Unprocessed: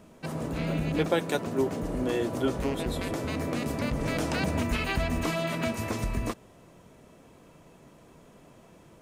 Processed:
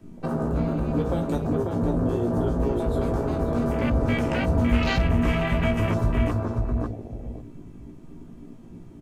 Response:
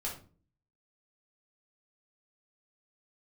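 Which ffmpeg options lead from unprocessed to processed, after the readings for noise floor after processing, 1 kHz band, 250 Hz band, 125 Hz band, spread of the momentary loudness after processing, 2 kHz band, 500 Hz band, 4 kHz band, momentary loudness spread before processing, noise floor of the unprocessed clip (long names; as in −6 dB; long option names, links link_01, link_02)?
−44 dBFS, +3.5 dB, +6.0 dB, +8.5 dB, 12 LU, +2.0 dB, +4.0 dB, −0.5 dB, 4 LU, −55 dBFS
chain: -filter_complex "[0:a]acrossover=split=150|3000[link_01][link_02][link_03];[link_02]acompressor=threshold=-34dB:ratio=6[link_04];[link_01][link_04][link_03]amix=inputs=3:normalize=0,asplit=2[link_05][link_06];[link_06]adelay=543,lowpass=frequency=2800:poles=1,volume=-3.5dB,asplit=2[link_07][link_08];[link_08]adelay=543,lowpass=frequency=2800:poles=1,volume=0.2,asplit=2[link_09][link_10];[link_10]adelay=543,lowpass=frequency=2800:poles=1,volume=0.2[link_11];[link_05][link_07][link_09][link_11]amix=inputs=4:normalize=0,asplit=2[link_12][link_13];[link_13]acompressor=threshold=-37dB:ratio=10,volume=0dB[link_14];[link_12][link_14]amix=inputs=2:normalize=0,asplit=2[link_15][link_16];[link_16]adelay=17,volume=-6dB[link_17];[link_15][link_17]amix=inputs=2:normalize=0,asplit=2[link_18][link_19];[1:a]atrim=start_sample=2205[link_20];[link_19][link_20]afir=irnorm=-1:irlink=0,volume=-1.5dB[link_21];[link_18][link_21]amix=inputs=2:normalize=0,afwtdn=0.0282"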